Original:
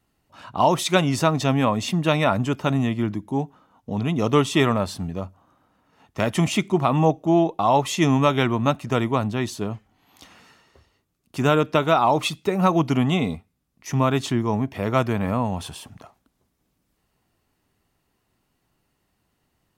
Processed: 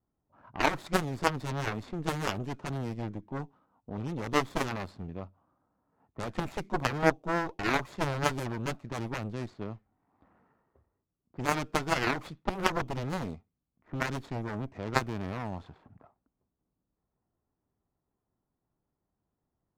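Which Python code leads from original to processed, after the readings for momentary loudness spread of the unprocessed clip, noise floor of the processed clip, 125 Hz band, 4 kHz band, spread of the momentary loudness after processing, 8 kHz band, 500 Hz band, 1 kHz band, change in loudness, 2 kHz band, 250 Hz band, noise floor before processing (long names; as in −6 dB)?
12 LU, −85 dBFS, −12.0 dB, −10.5 dB, 13 LU, −10.0 dB, −12.0 dB, −10.0 dB, −11.0 dB, −4.5 dB, −13.5 dB, −73 dBFS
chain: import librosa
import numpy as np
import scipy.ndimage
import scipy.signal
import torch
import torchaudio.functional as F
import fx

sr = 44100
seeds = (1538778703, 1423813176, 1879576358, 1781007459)

y = scipy.signal.medfilt(x, 15)
y = fx.env_lowpass(y, sr, base_hz=1300.0, full_db=-18.0)
y = fx.cheby_harmonics(y, sr, harmonics=(3, 4, 5, 7), levels_db=(-7, -17, -20, -24), full_scale_db=-6.0)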